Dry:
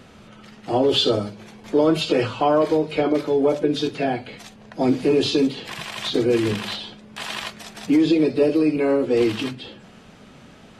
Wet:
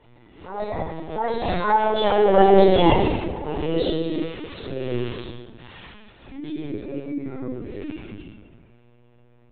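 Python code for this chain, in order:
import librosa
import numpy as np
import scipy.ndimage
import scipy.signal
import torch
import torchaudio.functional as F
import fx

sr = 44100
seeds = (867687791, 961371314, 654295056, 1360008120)

p1 = fx.speed_glide(x, sr, from_pct=151, to_pct=76)
p2 = fx.doppler_pass(p1, sr, speed_mps=14, closest_m=4.2, pass_at_s=2.52)
p3 = fx.transient(p2, sr, attack_db=-11, sustain_db=5)
p4 = fx.dmg_buzz(p3, sr, base_hz=120.0, harmonics=8, level_db=-68.0, tilt_db=-5, odd_only=False)
p5 = p4 + fx.echo_stepped(p4, sr, ms=125, hz=170.0, octaves=0.7, feedback_pct=70, wet_db=-8.5, dry=0)
p6 = fx.room_shoebox(p5, sr, seeds[0], volume_m3=500.0, walls='mixed', distance_m=4.7)
p7 = fx.lpc_vocoder(p6, sr, seeds[1], excitation='pitch_kept', order=16)
p8 = fx.pre_swell(p7, sr, db_per_s=93.0)
y = p8 * 10.0 ** (-1.5 / 20.0)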